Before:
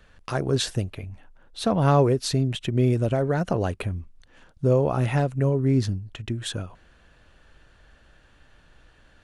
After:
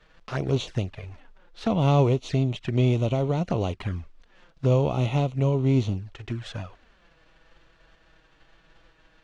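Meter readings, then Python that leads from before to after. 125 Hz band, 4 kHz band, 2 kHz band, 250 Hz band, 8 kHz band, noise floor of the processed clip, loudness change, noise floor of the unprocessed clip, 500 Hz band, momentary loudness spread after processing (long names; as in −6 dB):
0.0 dB, −5.0 dB, −3.5 dB, −1.0 dB, below −10 dB, −61 dBFS, −1.0 dB, −57 dBFS, −2.5 dB, 14 LU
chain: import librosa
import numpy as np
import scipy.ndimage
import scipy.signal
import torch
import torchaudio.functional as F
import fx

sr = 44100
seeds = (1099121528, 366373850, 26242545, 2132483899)

y = fx.envelope_flatten(x, sr, power=0.6)
y = fx.env_flanger(y, sr, rest_ms=6.9, full_db=-21.0)
y = fx.air_absorb(y, sr, metres=160.0)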